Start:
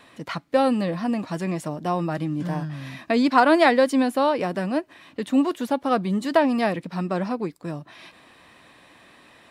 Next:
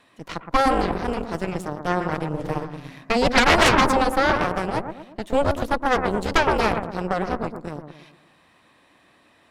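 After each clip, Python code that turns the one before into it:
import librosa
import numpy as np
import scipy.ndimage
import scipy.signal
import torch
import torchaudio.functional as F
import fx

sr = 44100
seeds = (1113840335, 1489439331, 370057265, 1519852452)

y = fx.echo_bbd(x, sr, ms=116, stages=1024, feedback_pct=51, wet_db=-5)
y = fx.cheby_harmonics(y, sr, harmonics=(3, 6, 7), levels_db=(-7, -8, -32), full_scale_db=-3.0)
y = F.gain(torch.from_numpy(y), -1.0).numpy()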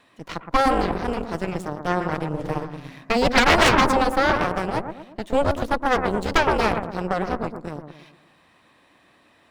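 y = scipy.signal.medfilt(x, 3)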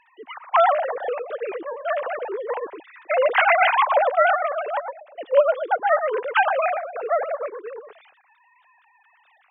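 y = fx.sine_speech(x, sr)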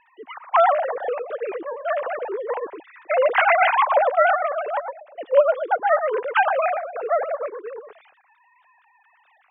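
y = fx.air_absorb(x, sr, metres=230.0)
y = F.gain(torch.from_numpy(y), 1.5).numpy()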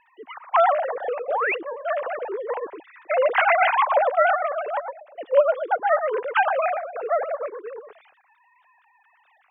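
y = fx.spec_paint(x, sr, seeds[0], shape='rise', start_s=1.28, length_s=0.27, low_hz=490.0, high_hz=2900.0, level_db=-22.0)
y = F.gain(torch.from_numpy(y), -1.5).numpy()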